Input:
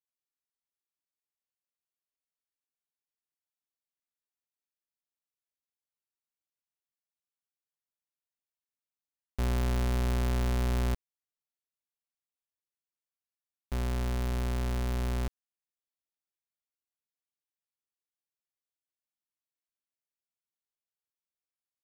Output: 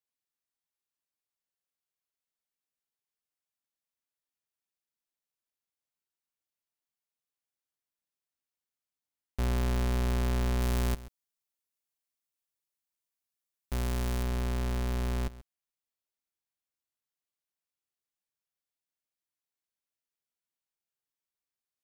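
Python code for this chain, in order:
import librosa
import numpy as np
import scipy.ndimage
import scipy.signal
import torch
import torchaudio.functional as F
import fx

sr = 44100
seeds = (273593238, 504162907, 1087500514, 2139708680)

y = fx.high_shelf(x, sr, hz=5200.0, db=6.5, at=(10.61, 14.23))
y = y + 10.0 ** (-17.5 / 20.0) * np.pad(y, (int(135 * sr / 1000.0), 0))[:len(y)]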